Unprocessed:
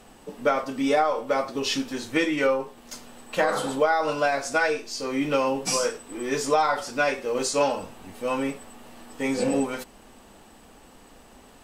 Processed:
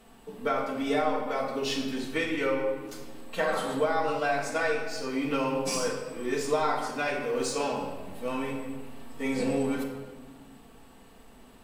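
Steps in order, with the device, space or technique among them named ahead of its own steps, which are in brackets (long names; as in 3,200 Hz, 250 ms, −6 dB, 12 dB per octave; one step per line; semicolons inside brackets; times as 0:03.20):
exciter from parts (in parallel at −7 dB: high-pass filter 4,500 Hz 24 dB per octave + soft clipping −32 dBFS, distortion −8 dB + high-pass filter 3,300 Hz 12 dB per octave)
on the sum: notch filter 570 Hz, Q 19
rectangular room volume 1,300 cubic metres, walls mixed, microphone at 1.6 metres
level −6.5 dB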